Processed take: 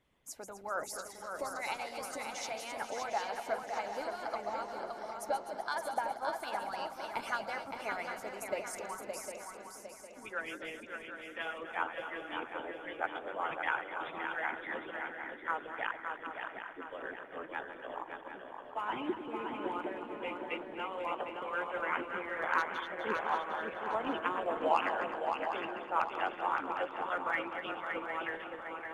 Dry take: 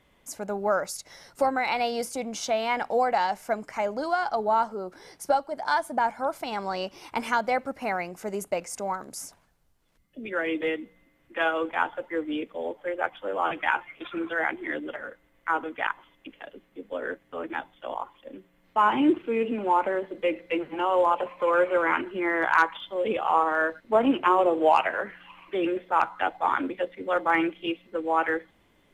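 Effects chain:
feedback delay that plays each chunk backwards 126 ms, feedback 65%, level −8.5 dB
harmonic and percussive parts rebalanced harmonic −14 dB
feedback echo with a long and a short gap by turns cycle 756 ms, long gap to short 3 to 1, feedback 39%, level −6 dB
level −7 dB

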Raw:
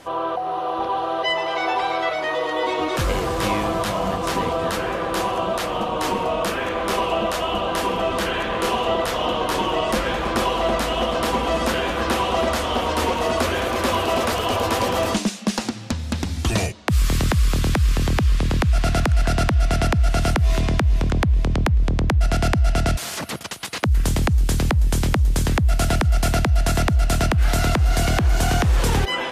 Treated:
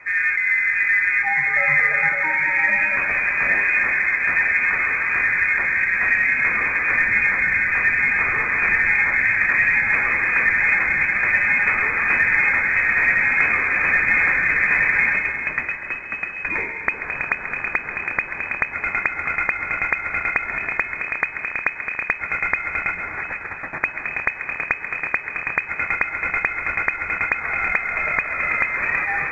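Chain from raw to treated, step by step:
Chebyshev high-pass with heavy ripple 240 Hz, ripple 9 dB
on a send: echo with a time of its own for lows and highs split 1,200 Hz, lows 135 ms, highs 360 ms, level −9.5 dB
on the sum: comb and all-pass reverb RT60 1.7 s, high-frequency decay 0.55×, pre-delay 80 ms, DRR 8.5 dB
voice inversion scrambler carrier 2,800 Hz
level +6.5 dB
mu-law 128 kbit/s 16,000 Hz

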